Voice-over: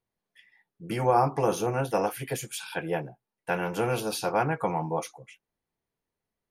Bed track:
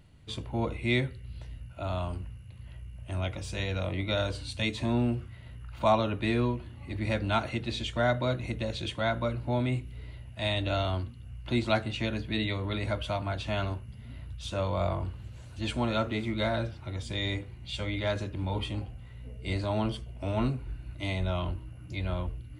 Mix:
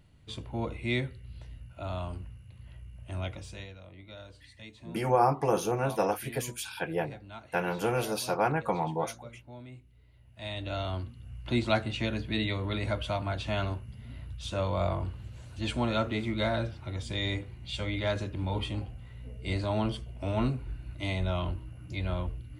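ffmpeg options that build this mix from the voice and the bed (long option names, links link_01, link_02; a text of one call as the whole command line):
ffmpeg -i stem1.wav -i stem2.wav -filter_complex "[0:a]adelay=4050,volume=-1.5dB[link_01];[1:a]volume=15dB,afade=type=out:start_time=3.27:duration=0.49:silence=0.177828,afade=type=in:start_time=10.11:duration=1.29:silence=0.125893[link_02];[link_01][link_02]amix=inputs=2:normalize=0" out.wav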